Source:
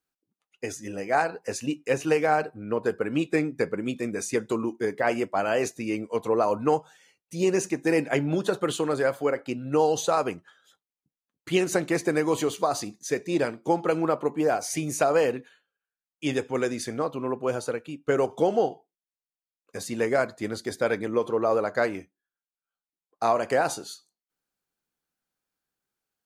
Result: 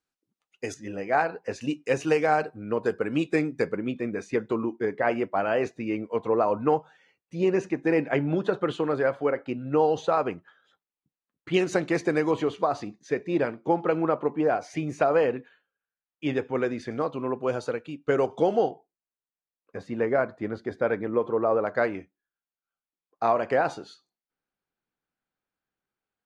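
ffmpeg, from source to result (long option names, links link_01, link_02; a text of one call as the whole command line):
ffmpeg -i in.wav -af "asetnsamples=nb_out_samples=441:pad=0,asendcmd='0.74 lowpass f 3400;1.61 lowpass f 6900;3.77 lowpass f 2600;11.54 lowpass f 4700;12.31 lowpass f 2600;16.91 lowpass f 4700;18.71 lowpass f 1800;21.67 lowpass f 2900',lowpass=8200" out.wav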